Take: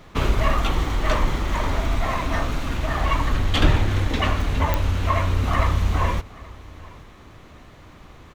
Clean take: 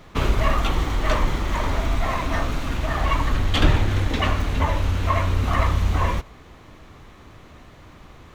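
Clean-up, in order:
click removal
echo removal 825 ms −22 dB

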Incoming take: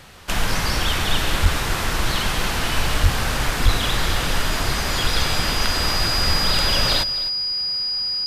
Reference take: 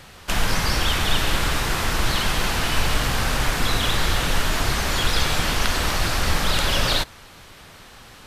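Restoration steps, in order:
clipped peaks rebuilt −6.5 dBFS
notch filter 4,900 Hz, Q 30
0:01.42–0:01.54: high-pass filter 140 Hz 24 dB per octave
0:03.02–0:03.14: high-pass filter 140 Hz 24 dB per octave
0:03.64–0:03.76: high-pass filter 140 Hz 24 dB per octave
echo removal 259 ms −16 dB

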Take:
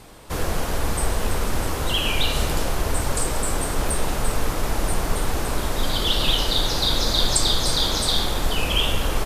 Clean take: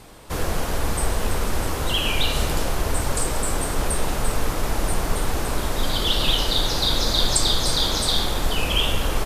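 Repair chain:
repair the gap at 0:01.55/0:03.89, 2.1 ms

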